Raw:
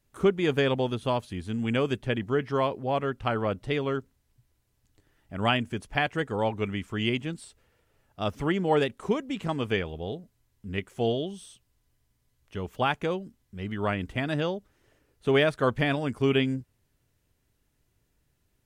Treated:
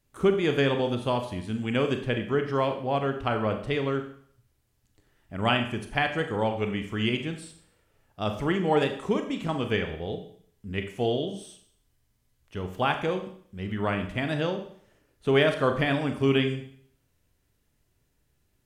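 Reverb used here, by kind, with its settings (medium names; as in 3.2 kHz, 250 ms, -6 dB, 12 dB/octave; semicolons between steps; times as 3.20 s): Schroeder reverb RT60 0.58 s, combs from 29 ms, DRR 6 dB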